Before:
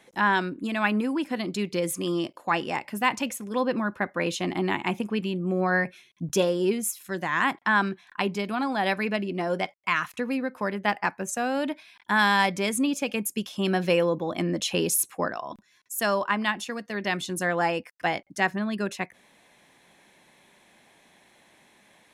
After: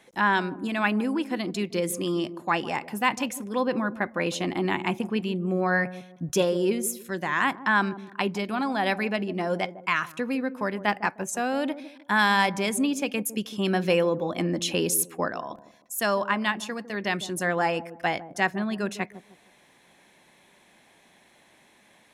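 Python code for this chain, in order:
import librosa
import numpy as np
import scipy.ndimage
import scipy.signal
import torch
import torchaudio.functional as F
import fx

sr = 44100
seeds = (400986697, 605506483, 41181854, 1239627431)

y = fx.echo_wet_lowpass(x, sr, ms=154, feedback_pct=31, hz=690.0, wet_db=-12)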